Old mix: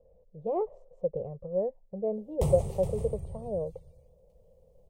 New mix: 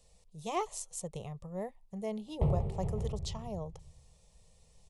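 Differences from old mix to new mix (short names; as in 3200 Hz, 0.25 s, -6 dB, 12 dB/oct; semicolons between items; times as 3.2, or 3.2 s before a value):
speech: remove synth low-pass 530 Hz, resonance Q 6.1; background: add air absorption 470 m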